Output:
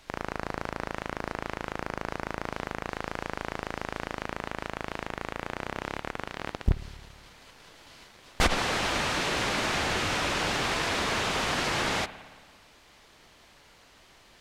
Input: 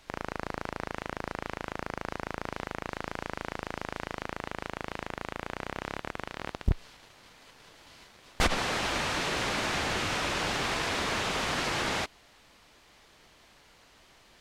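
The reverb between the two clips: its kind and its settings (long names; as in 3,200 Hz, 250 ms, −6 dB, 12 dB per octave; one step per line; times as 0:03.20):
spring reverb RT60 1.5 s, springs 56 ms, DRR 14.5 dB
level +2 dB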